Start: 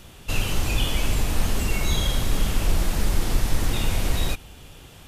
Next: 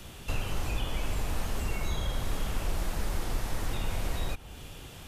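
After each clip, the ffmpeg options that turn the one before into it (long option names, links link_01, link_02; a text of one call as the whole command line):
ffmpeg -i in.wav -filter_complex "[0:a]acrossover=split=160|420|1800[link_01][link_02][link_03][link_04];[link_01]acompressor=threshold=-28dB:ratio=4[link_05];[link_02]acompressor=threshold=-48dB:ratio=4[link_06];[link_03]acompressor=threshold=-41dB:ratio=4[link_07];[link_04]acompressor=threshold=-45dB:ratio=4[link_08];[link_05][link_06][link_07][link_08]amix=inputs=4:normalize=0" out.wav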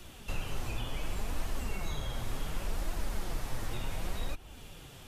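ffmpeg -i in.wav -af "flanger=delay=2.6:depth=6.5:regen=52:speed=0.68:shape=triangular" out.wav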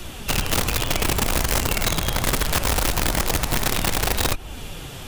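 ffmpeg -i in.wav -filter_complex "[0:a]asplit=2[link_01][link_02];[link_02]alimiter=level_in=9dB:limit=-24dB:level=0:latency=1:release=74,volume=-9dB,volume=3dB[link_03];[link_01][link_03]amix=inputs=2:normalize=0,aeval=exprs='(mod(15*val(0)+1,2)-1)/15':channel_layout=same,volume=7dB" out.wav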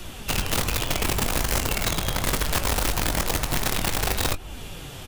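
ffmpeg -i in.wav -filter_complex "[0:a]asplit=2[link_01][link_02];[link_02]adelay=21,volume=-11dB[link_03];[link_01][link_03]amix=inputs=2:normalize=0,volume=-3dB" out.wav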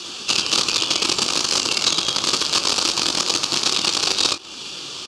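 ffmpeg -i in.wav -af "aexciter=amount=2.6:drive=8.3:freq=2500,acrusher=bits=6:dc=4:mix=0:aa=0.000001,highpass=230,equalizer=frequency=340:width_type=q:width=4:gain=6,equalizer=frequency=680:width_type=q:width=4:gain=-5,equalizer=frequency=1200:width_type=q:width=4:gain=7,equalizer=frequency=2000:width_type=q:width=4:gain=-8,equalizer=frequency=4600:width_type=q:width=4:gain=7,lowpass=frequency=6400:width=0.5412,lowpass=frequency=6400:width=1.3066" out.wav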